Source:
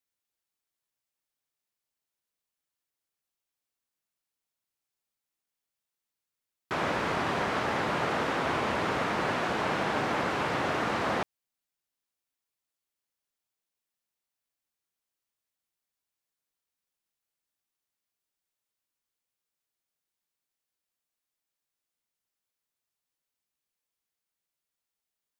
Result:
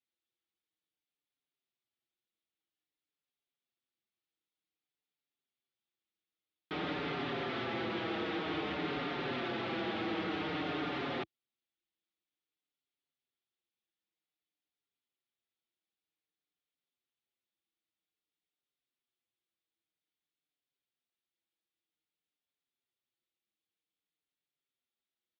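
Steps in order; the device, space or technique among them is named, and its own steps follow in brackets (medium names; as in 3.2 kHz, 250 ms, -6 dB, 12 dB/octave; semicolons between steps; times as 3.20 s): barber-pole flanger into a guitar amplifier (endless flanger 5.5 ms -0.52 Hz; saturation -31 dBFS, distortion -13 dB; cabinet simulation 91–4100 Hz, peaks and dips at 330 Hz +7 dB, 600 Hz -5 dB, 1 kHz -9 dB, 1.6 kHz -4 dB, 3.5 kHz +5 dB)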